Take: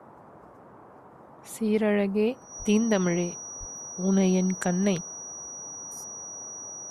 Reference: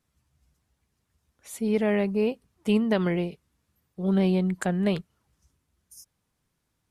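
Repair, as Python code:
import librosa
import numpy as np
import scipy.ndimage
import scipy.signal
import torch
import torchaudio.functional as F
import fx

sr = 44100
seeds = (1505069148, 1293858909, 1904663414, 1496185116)

y = fx.notch(x, sr, hz=5800.0, q=30.0)
y = fx.highpass(y, sr, hz=140.0, slope=24, at=(2.58, 2.7), fade=0.02)
y = fx.highpass(y, sr, hz=140.0, slope=24, at=(3.59, 3.71), fade=0.02)
y = fx.noise_reduce(y, sr, print_start_s=0.89, print_end_s=1.39, reduce_db=27.0)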